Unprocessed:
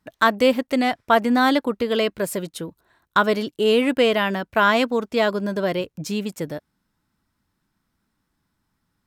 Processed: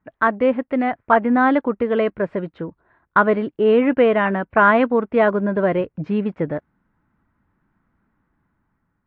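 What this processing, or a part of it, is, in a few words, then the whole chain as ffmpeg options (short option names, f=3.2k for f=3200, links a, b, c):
action camera in a waterproof case: -af "lowpass=f=2k:w=0.5412,lowpass=f=2k:w=1.3066,dynaudnorm=f=470:g=5:m=7dB" -ar 44100 -c:a aac -b:a 48k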